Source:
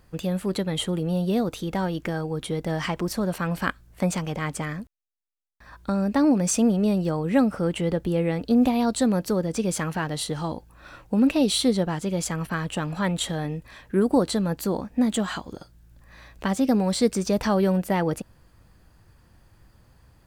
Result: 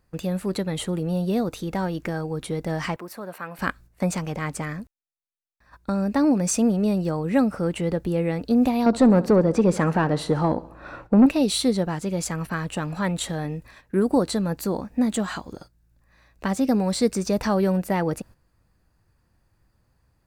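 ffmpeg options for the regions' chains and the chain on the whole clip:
-filter_complex "[0:a]asettb=1/sr,asplit=3[a][b][c];[a]atrim=end=2.964[d];[b]atrim=start=2.96:end=3.59,asetpts=PTS-STARTPTS,afade=t=in:d=0.004:c=qsin,afade=t=out:st=0.626:d=0.004:c=qsin,highpass=f=970:p=1,equalizer=f=6k:t=o:w=1.8:g=-12.5[e];[c]atrim=start=3.586[f];[d][e]acrossfade=d=0.004:c1=hsin:c2=qsin[g];[g][f]acrossfade=d=0.004:c1=qsin:c2=hsin,asettb=1/sr,asplit=3[h][i][j];[h]atrim=end=8.864[k];[i]atrim=start=8.86:end=11.26,asetpts=PTS-STARTPTS,afade=t=in:d=0.004:c=qsin,afade=t=out:st=2.396:d=0.004:c=qsin,tiltshelf=f=710:g=6.5,aecho=1:1:68|136|204|272:0.0944|0.0538|0.0307|0.0175,atrim=end_sample=105840,asplit=2[l][m];[m]highpass=f=720:p=1,volume=18dB,asoftclip=type=tanh:threshold=-6dB[n];[l][n]amix=inputs=2:normalize=0,lowpass=f=1.6k:p=1,volume=-6dB[o];[j]atrim=start=11.256[p];[k][o]acrossfade=d=0.004:c1=hsin:c2=qsin[q];[q][p]acrossfade=d=0.004:c1=qsin:c2=hsin,agate=range=-10dB:threshold=-44dB:ratio=16:detection=peak,equalizer=f=3.2k:w=7.2:g=-7"

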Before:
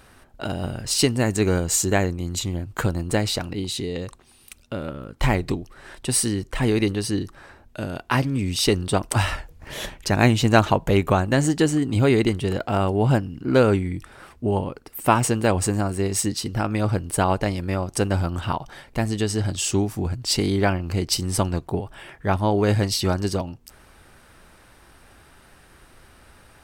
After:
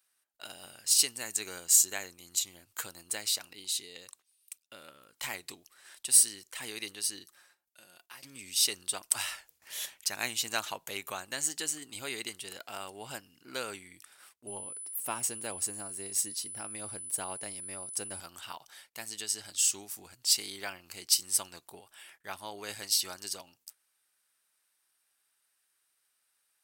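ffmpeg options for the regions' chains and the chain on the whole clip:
-filter_complex "[0:a]asettb=1/sr,asplit=3[a][b][c];[a]atrim=end=7.244[d];[b]atrim=start=7.24:end=8.23,asetpts=PTS-STARTPTS,afade=t=in:d=0.004:c=qsin,afade=t=out:st=0.986:d=0.004:c=qsin,highshelf=f=12k:g=5,aecho=1:1:5.6:0.43,atrim=end_sample=43659,acompressor=threshold=-43dB:ratio=2:attack=3.2:release=140:knee=1:detection=peak[e];[c]atrim=start=8.226[f];[d][e]acrossfade=d=0.004:c1=hsin:c2=qsin[g];[g][f]acrossfade=d=0.004:c1=qsin:c2=hsin,asettb=1/sr,asplit=3[h][i][j];[h]atrim=end=14.474[k];[i]atrim=start=14.47:end=18.2,asetpts=PTS-STARTPTS,afade=t=in:d=0.004:c=qsin,afade=t=out:st=3.726:d=0.004:c=qsin,tiltshelf=f=720:g=6,aeval=exprs='val(0)+0.00794*sin(2*PI*10000*n/s)':c=same[l];[j]atrim=start=18.196[m];[k][l]acrossfade=d=0.004:c1=hsin:c2=qsin[n];[n][m]acrossfade=d=0.004:c1=qsin:c2=hsin,agate=range=-16dB:threshold=-45dB:ratio=16:detection=peak,aderivative"

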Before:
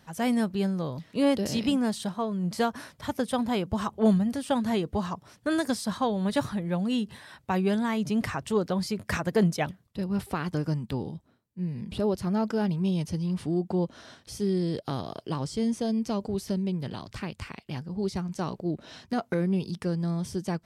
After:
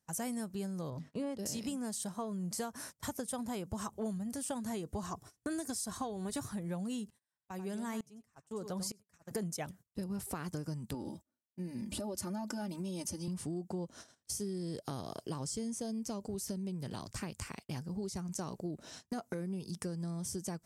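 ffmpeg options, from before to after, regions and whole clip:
-filter_complex "[0:a]asettb=1/sr,asplit=3[a][b][c];[a]atrim=end=0.904[d];[b]atrim=start=0.9:end=1.39,asetpts=PTS-STARTPTS,afade=t=in:d=0.004:c=qsin,afade=t=out:st=0.486:d=0.004:c=qsin,aemphasis=mode=reproduction:type=75kf,bandreject=f=50:t=h:w=6,bandreject=f=100:t=h:w=6,bandreject=f=150:t=h:w=6,bandreject=f=200:t=h:w=6,bandreject=f=250:t=h:w=6,bandreject=f=300:t=h:w=6,bandreject=f=350:t=h:w=6[e];[c]atrim=start=1.386[f];[d][e]acrossfade=d=0.004:c1=hsin:c2=qsin[g];[g][f]acrossfade=d=0.004:c1=qsin:c2=hsin,asettb=1/sr,asplit=3[h][i][j];[h]atrim=end=5.034[k];[i]atrim=start=5.03:end=6.48,asetpts=PTS-STARTPTS,afade=t=in:d=0.004:c=qsin,afade=t=out:st=1.446:d=0.004:c=qsin,lowshelf=f=150:g=7,aecho=1:1:2.7:0.46,atrim=end_sample=63945[l];[j]atrim=start=6.476[m];[k][l]acrossfade=d=0.004:c1=hsin:c2=qsin[n];[n][m]acrossfade=d=0.004:c1=qsin:c2=hsin,asettb=1/sr,asplit=3[o][p][q];[o]atrim=end=7.104[r];[p]atrim=start=7.1:end=9.31,asetpts=PTS-STARTPTS,afade=t=in:d=0.004:c=qsin,afade=t=out:st=2.206:d=0.004:c=qsin,aecho=1:1:94:0.237,atrim=end_sample=97461,aeval=exprs='val(0)*pow(10,-27*if(lt(mod(-1.1*n/s,1),2*abs(-1.1)/1000),1-mod(-1.1*n/s,1)/(2*abs(-1.1)/1000),(mod(-1.1*n/s,1)-2*abs(-1.1)/1000)/(1-2*abs(-1.1)/1000))/20)':c=same[s];[q]atrim=start=9.306[t];[r][s]acrossfade=d=0.004:c1=hsin:c2=qsin[u];[u][t]acrossfade=d=0.004:c1=qsin:c2=hsin,asettb=1/sr,asplit=3[v][w][x];[v]atrim=end=10.944[y];[w]atrim=start=10.94:end=13.28,asetpts=PTS-STARTPTS,afade=t=in:d=0.004:c=qsin,afade=t=out:st=2.336:d=0.004:c=qsin,highpass=85,aecho=1:1:3.4:0.97,atrim=end_sample=103194,acompressor=threshold=-29dB:ratio=6:attack=3.2:release=140:knee=1:detection=peak[z];[x]atrim=start=13.276[aa];[y][z]acrossfade=d=0.004:c1=hsin:c2=qsin[ab];[ab][aa]acrossfade=d=0.004:c1=qsin:c2=hsin,agate=range=-24dB:threshold=-45dB:ratio=16:detection=peak,highshelf=f=5.1k:t=q:w=1.5:g=11,acompressor=threshold=-33dB:ratio=6,volume=-3dB"

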